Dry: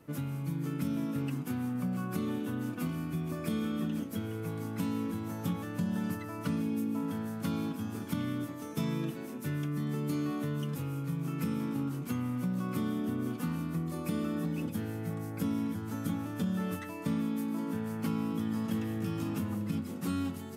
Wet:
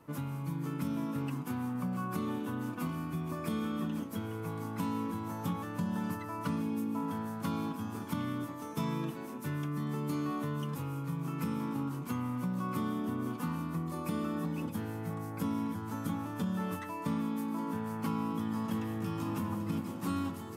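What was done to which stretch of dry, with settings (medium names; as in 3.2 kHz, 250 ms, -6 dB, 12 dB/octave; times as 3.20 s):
18.87–19.51 s: echo throw 400 ms, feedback 80%, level -10.5 dB
whole clip: peaking EQ 1 kHz +10 dB 0.59 oct; trim -2 dB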